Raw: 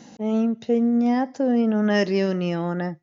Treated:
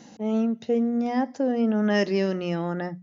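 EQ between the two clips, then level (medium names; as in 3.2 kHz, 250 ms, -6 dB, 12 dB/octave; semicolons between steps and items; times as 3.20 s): hum notches 60/120/180/240 Hz; -2.0 dB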